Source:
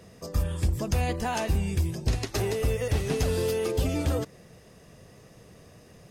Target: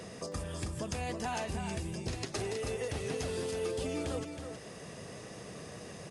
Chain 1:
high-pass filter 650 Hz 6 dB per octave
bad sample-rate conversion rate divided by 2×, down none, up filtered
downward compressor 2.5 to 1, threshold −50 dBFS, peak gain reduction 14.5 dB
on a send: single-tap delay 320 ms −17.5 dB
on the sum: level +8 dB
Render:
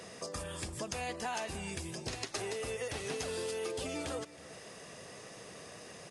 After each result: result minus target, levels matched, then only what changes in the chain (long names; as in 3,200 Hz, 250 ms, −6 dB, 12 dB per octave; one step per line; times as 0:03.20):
echo-to-direct −11 dB; 250 Hz band −3.0 dB
change: single-tap delay 320 ms −6.5 dB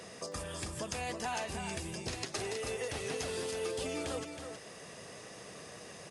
250 Hz band −3.0 dB
change: high-pass filter 200 Hz 6 dB per octave